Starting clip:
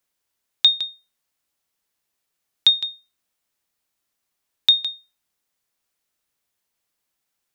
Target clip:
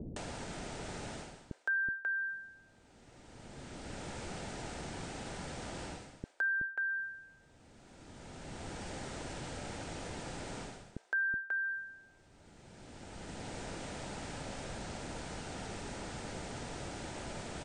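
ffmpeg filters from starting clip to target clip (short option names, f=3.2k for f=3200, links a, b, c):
-filter_complex "[0:a]highshelf=f=3.6k:g=-11,acompressor=mode=upward:threshold=-29dB:ratio=2.5,acrossover=split=920[a][b];[b]adelay=70[c];[a][c]amix=inputs=2:normalize=0,asetrate=18846,aresample=44100,tiltshelf=f=1.1k:g=5.5,bandreject=f=1.1k:w=5.5,areverse,acompressor=threshold=-47dB:ratio=5,areverse,volume=11.5dB"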